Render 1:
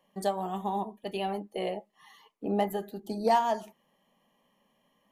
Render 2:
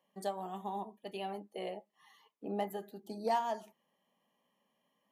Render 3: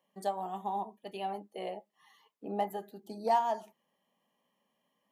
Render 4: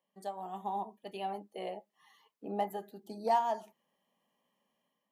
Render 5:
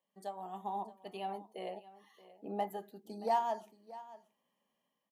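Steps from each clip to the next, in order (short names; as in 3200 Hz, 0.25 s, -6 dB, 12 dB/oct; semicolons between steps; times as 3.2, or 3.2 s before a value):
HPF 160 Hz 6 dB/oct; gain -7.5 dB
dynamic EQ 820 Hz, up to +6 dB, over -47 dBFS, Q 1.7
AGC gain up to 6.5 dB; gain -7.5 dB
echo 0.626 s -17.5 dB; gain -2.5 dB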